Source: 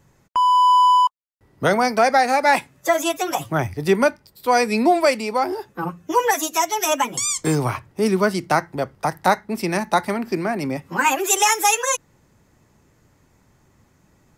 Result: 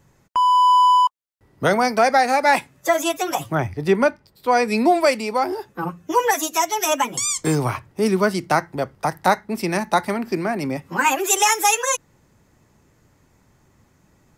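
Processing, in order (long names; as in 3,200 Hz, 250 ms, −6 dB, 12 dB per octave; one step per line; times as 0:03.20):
0:03.55–0:04.68: high-shelf EQ 5,300 Hz −10 dB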